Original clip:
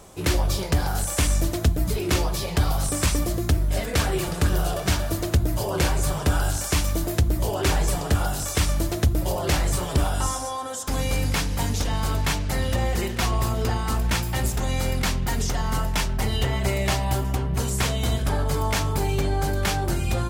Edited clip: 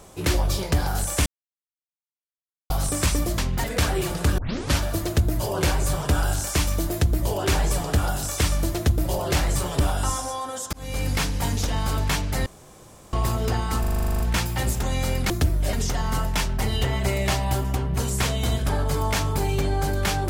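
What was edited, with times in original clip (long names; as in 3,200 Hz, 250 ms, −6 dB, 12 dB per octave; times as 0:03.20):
0:01.26–0:02.70: silence
0:03.38–0:03.81: swap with 0:15.07–0:15.33
0:04.55: tape start 0.40 s
0:10.90–0:11.41: fade in equal-power
0:12.63–0:13.30: fill with room tone
0:13.97: stutter 0.04 s, 11 plays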